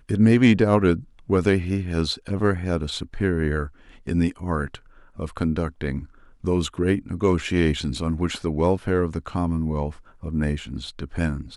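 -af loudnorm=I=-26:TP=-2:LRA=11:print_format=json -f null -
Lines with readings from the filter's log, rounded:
"input_i" : "-24.1",
"input_tp" : "-3.8",
"input_lra" : "2.6",
"input_thresh" : "-34.4",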